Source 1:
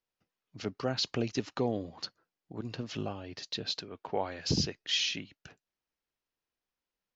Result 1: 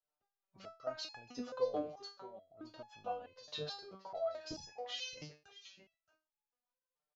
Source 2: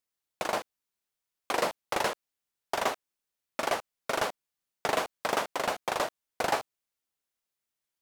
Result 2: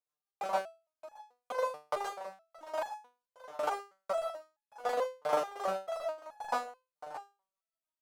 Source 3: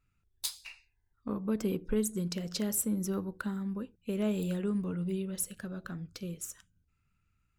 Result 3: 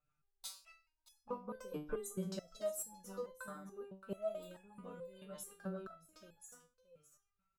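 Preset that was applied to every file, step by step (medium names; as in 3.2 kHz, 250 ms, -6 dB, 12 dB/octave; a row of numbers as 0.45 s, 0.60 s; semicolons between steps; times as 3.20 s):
high-order bell 830 Hz +12 dB; rotary cabinet horn 6.7 Hz; on a send: delay 622 ms -15 dB; on the sum: resonator arpeggio 4.6 Hz 150–840 Hz; trim +4 dB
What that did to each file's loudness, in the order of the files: -9.0 LU, -5.0 LU, -11.5 LU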